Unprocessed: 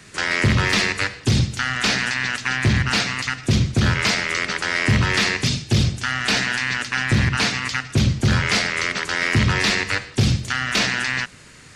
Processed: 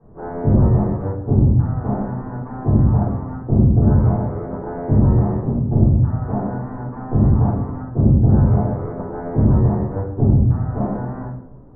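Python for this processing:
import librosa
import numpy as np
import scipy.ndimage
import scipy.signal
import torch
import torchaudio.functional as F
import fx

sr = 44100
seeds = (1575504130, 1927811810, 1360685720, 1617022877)

y = scipy.signal.sosfilt(scipy.signal.butter(6, 930.0, 'lowpass', fs=sr, output='sos'), x)
y = fx.room_shoebox(y, sr, seeds[0], volume_m3=140.0, walls='mixed', distance_m=3.9)
y = y * librosa.db_to_amplitude(-9.0)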